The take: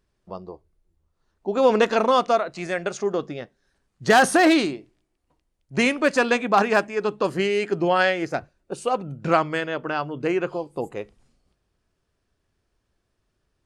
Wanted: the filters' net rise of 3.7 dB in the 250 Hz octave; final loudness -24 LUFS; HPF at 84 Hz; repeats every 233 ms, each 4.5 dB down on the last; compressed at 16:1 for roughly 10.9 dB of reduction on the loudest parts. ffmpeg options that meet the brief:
-af "highpass=84,equalizer=f=250:t=o:g=5,acompressor=threshold=0.0891:ratio=16,aecho=1:1:233|466|699|932|1165|1398|1631|1864|2097:0.596|0.357|0.214|0.129|0.0772|0.0463|0.0278|0.0167|0.01,volume=1.33"

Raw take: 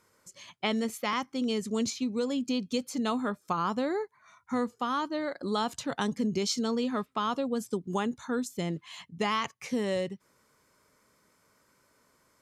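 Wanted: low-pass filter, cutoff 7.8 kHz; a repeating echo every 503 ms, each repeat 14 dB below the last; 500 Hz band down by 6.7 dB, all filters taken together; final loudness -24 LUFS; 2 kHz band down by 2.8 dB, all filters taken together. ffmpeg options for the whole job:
-af "lowpass=7800,equalizer=f=500:t=o:g=-8,equalizer=f=2000:t=o:g=-3,aecho=1:1:503|1006:0.2|0.0399,volume=3.16"

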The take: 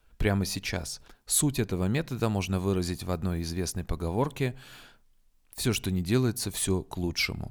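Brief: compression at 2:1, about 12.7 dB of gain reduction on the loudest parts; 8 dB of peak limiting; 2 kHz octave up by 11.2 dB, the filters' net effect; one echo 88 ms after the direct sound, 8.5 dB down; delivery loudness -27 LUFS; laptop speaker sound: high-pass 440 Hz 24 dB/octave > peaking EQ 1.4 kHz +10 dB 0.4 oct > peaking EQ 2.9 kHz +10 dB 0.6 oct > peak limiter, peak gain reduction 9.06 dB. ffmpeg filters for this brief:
-af "equalizer=f=2000:t=o:g=6.5,acompressor=threshold=0.00631:ratio=2,alimiter=level_in=2.24:limit=0.0631:level=0:latency=1,volume=0.447,highpass=f=440:w=0.5412,highpass=f=440:w=1.3066,equalizer=f=1400:t=o:w=0.4:g=10,equalizer=f=2900:t=o:w=0.6:g=10,aecho=1:1:88:0.376,volume=6.31,alimiter=limit=0.168:level=0:latency=1"

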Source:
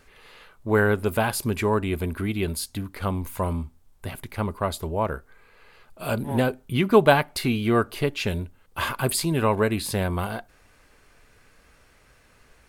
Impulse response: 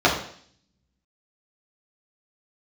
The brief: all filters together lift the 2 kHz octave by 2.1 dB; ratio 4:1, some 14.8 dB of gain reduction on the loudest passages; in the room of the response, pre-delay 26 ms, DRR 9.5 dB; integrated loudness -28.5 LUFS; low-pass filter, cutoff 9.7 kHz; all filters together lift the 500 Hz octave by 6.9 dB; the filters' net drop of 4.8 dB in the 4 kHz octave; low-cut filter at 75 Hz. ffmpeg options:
-filter_complex "[0:a]highpass=75,lowpass=9700,equalizer=f=500:t=o:g=8.5,equalizer=f=2000:t=o:g=4,equalizer=f=4000:t=o:g=-8,acompressor=threshold=0.0708:ratio=4,asplit=2[s0][s1];[1:a]atrim=start_sample=2205,adelay=26[s2];[s1][s2]afir=irnorm=-1:irlink=0,volume=0.0299[s3];[s0][s3]amix=inputs=2:normalize=0,volume=0.944"

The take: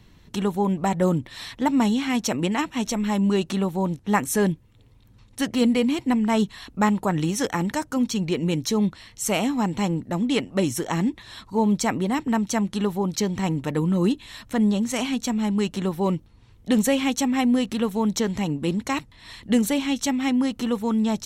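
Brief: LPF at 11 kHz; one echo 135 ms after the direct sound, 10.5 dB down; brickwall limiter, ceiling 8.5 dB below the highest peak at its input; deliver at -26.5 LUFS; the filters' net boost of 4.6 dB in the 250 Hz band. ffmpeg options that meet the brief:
-af "lowpass=11000,equalizer=f=250:t=o:g=5.5,alimiter=limit=0.2:level=0:latency=1,aecho=1:1:135:0.299,volume=0.631"

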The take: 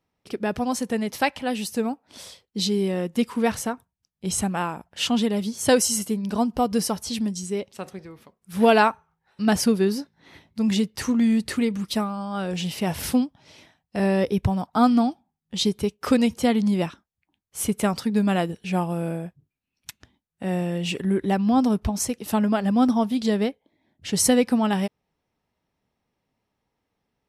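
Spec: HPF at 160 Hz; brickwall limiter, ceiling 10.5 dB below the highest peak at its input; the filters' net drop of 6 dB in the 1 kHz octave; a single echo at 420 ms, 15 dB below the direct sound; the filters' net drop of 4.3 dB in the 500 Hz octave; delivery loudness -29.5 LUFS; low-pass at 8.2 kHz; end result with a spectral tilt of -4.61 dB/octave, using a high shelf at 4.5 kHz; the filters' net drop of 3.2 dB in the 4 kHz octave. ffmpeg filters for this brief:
-af "highpass=160,lowpass=8200,equalizer=f=500:t=o:g=-3.5,equalizer=f=1000:t=o:g=-7,equalizer=f=4000:t=o:g=-8,highshelf=f=4500:g=7.5,alimiter=limit=0.119:level=0:latency=1,aecho=1:1:420:0.178,volume=0.841"

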